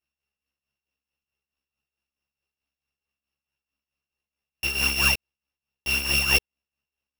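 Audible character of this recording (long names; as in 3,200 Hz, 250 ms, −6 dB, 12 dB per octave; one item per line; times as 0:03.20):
a buzz of ramps at a fixed pitch in blocks of 16 samples
tremolo triangle 4.6 Hz, depth 70%
aliases and images of a low sample rate 8,200 Hz, jitter 0%
a shimmering, thickened sound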